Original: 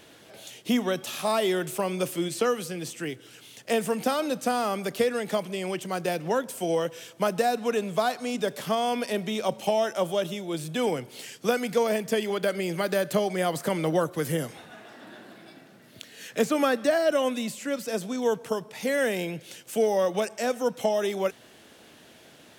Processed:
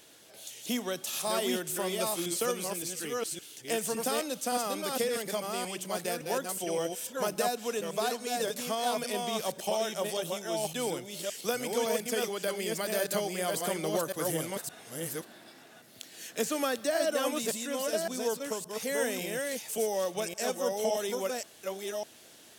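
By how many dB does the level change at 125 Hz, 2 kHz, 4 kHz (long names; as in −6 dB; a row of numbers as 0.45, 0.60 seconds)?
−8.5, −4.5, −1.0 decibels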